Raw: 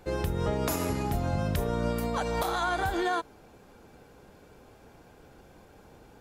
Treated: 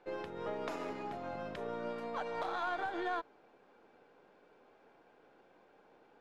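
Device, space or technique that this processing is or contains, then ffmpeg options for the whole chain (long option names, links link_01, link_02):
crystal radio: -af "highpass=330,lowpass=3000,aeval=exprs='if(lt(val(0),0),0.708*val(0),val(0))':channel_layout=same,volume=-6dB"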